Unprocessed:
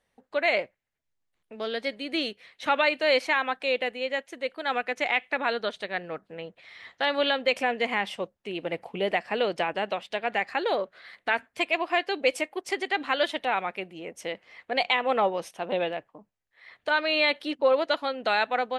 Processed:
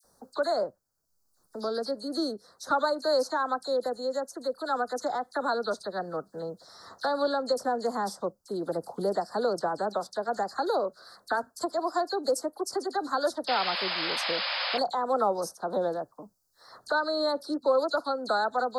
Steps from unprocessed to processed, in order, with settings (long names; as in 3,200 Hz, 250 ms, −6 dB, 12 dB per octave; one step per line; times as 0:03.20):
elliptic band-stop filter 1,400–4,600 Hz, stop band 80 dB
sound drawn into the spectrogram noise, 0:13.46–0:14.77, 500–5,200 Hz −34 dBFS
high-shelf EQ 3,400 Hz +8.5 dB
all-pass dispersion lows, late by 42 ms, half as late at 2,100 Hz
multiband upward and downward compressor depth 40%